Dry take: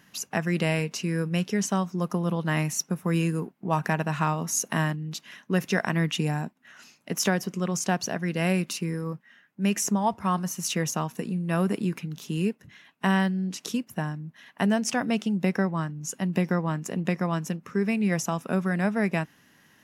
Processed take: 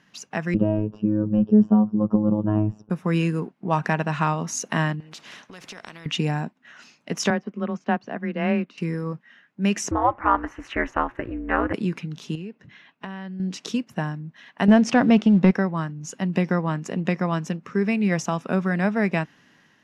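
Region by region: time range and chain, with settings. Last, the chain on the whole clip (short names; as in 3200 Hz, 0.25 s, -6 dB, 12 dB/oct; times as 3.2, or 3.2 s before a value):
0.54–2.9 robotiser 106 Hz + running mean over 21 samples + tilt -4.5 dB/oct
5–6.06 compressor 5:1, threshold -37 dBFS + spectral compressor 2:1
7.3–8.78 LPF 2300 Hz + frequency shift +19 Hz + upward expander, over -46 dBFS
9.91–11.74 EQ curve 290 Hz 0 dB, 1800 Hz +11 dB, 4700 Hz -19 dB + ring modulator 120 Hz
12.35–13.4 compressor 4:1, threshold -36 dBFS + air absorption 87 m
14.68–15.51 LPF 3600 Hz 6 dB/oct + low shelf 490 Hz +5.5 dB + sample leveller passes 1
whole clip: LPF 5400 Hz 12 dB/oct; bell 63 Hz -8.5 dB 1 oct; AGC gain up to 5 dB; gain -1.5 dB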